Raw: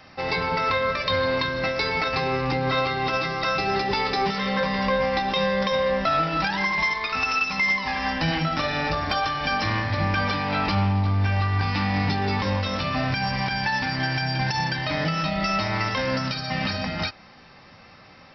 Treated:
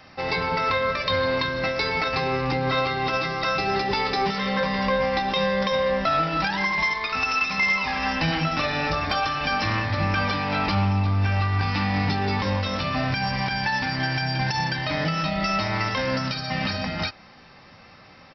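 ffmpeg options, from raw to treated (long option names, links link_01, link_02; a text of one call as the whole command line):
ffmpeg -i in.wav -filter_complex "[0:a]asplit=2[link_01][link_02];[link_02]afade=type=in:start_time=6.97:duration=0.01,afade=type=out:start_time=7.45:duration=0.01,aecho=0:1:400|800|1200|1600|2000|2400|2800|3200|3600|4000|4400|4800:0.421697|0.358442|0.304676|0.258974|0.220128|0.187109|0.159043|0.135186|0.114908|0.0976721|0.0830212|0.0705681[link_03];[link_01][link_03]amix=inputs=2:normalize=0" out.wav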